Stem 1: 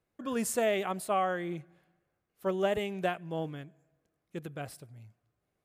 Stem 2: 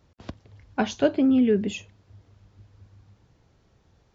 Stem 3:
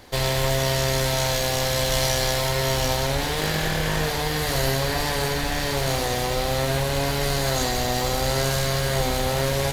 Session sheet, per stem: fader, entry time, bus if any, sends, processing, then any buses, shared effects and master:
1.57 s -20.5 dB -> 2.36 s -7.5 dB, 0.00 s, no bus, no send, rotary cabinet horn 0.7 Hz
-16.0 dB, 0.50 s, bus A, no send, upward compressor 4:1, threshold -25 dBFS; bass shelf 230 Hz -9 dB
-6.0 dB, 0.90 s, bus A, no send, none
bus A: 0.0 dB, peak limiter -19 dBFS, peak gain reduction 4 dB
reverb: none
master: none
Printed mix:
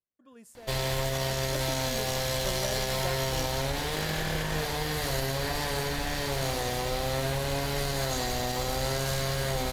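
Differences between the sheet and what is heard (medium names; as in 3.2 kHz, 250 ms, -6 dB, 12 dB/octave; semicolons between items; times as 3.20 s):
stem 1: missing rotary cabinet horn 0.7 Hz; stem 2: missing upward compressor 4:1, threshold -25 dBFS; stem 3: entry 0.90 s -> 0.55 s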